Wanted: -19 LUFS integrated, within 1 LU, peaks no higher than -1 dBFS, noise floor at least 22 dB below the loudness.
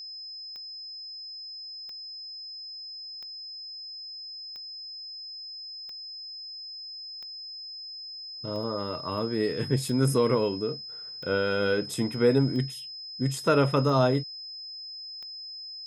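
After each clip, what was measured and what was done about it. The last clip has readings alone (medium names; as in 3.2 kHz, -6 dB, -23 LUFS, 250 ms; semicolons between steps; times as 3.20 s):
clicks found 12; steady tone 5.1 kHz; tone level -38 dBFS; loudness -30.5 LUFS; peak level -10.0 dBFS; loudness target -19.0 LUFS
-> de-click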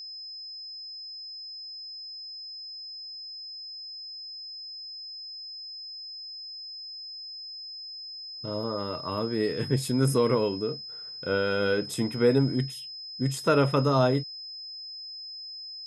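clicks found 0; steady tone 5.1 kHz; tone level -38 dBFS
-> band-stop 5.1 kHz, Q 30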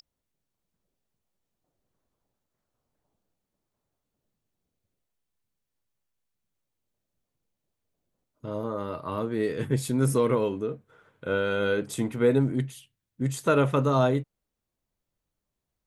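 steady tone not found; loudness -26.5 LUFS; peak level -10.0 dBFS; loudness target -19.0 LUFS
-> trim +7.5 dB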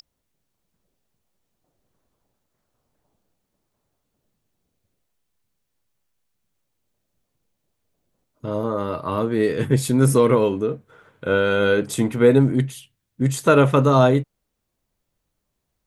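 loudness -19.0 LUFS; peak level -2.5 dBFS; noise floor -77 dBFS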